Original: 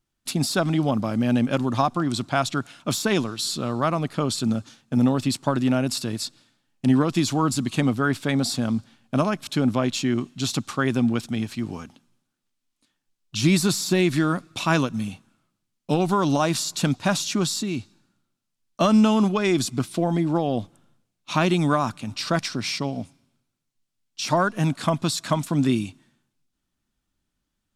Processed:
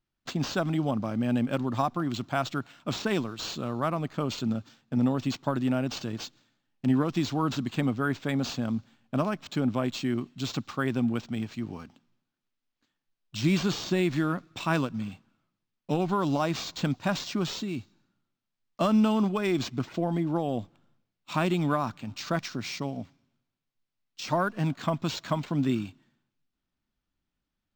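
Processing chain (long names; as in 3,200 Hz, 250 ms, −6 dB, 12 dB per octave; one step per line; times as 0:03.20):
linearly interpolated sample-rate reduction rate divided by 4×
level −5.5 dB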